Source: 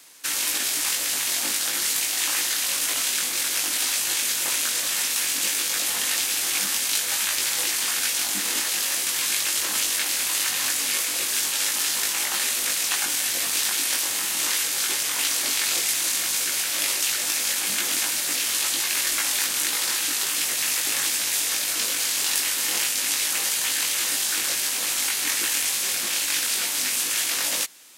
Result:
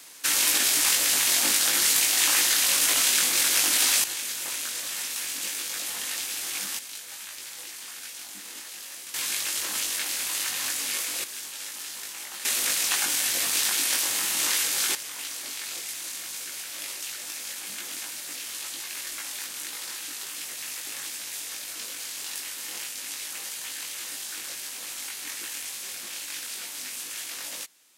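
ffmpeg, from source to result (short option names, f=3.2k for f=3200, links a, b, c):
-af "asetnsamples=n=441:p=0,asendcmd='4.04 volume volume -7.5dB;6.79 volume volume -15.5dB;9.14 volume volume -5dB;11.24 volume volume -13dB;12.45 volume volume -1dB;14.95 volume volume -11.5dB',volume=2.5dB"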